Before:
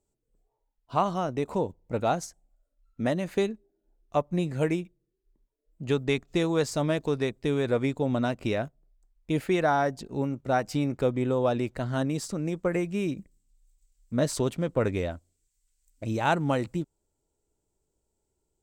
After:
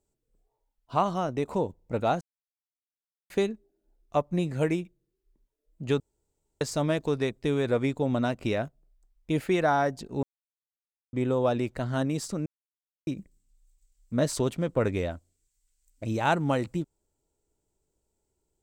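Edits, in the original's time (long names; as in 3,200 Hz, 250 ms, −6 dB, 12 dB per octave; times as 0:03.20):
0:02.21–0:03.30: silence
0:06.00–0:06.61: fill with room tone
0:10.23–0:11.13: silence
0:12.46–0:13.07: silence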